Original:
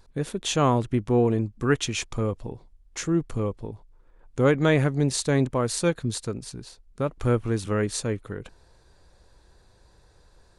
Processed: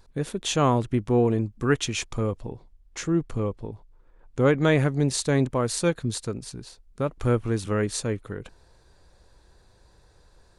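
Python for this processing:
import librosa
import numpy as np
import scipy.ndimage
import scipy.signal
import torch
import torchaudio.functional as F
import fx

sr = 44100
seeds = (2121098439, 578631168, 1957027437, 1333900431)

y = fx.high_shelf(x, sr, hz=8200.0, db=-7.0, at=(2.41, 4.63))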